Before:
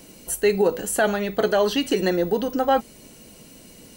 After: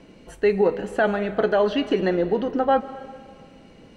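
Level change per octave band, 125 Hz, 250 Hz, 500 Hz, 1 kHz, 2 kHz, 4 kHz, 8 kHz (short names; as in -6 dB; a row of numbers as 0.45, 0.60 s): 0.0 dB, 0.0 dB, +0.5 dB, 0.0 dB, -1.0 dB, -5.5 dB, under -20 dB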